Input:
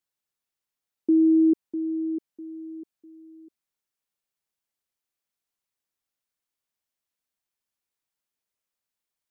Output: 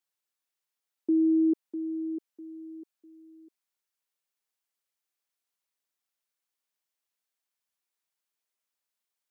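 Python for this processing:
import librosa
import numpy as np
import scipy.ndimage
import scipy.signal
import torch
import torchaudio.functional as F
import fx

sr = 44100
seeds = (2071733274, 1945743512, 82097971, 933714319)

y = fx.highpass(x, sr, hz=460.0, slope=6)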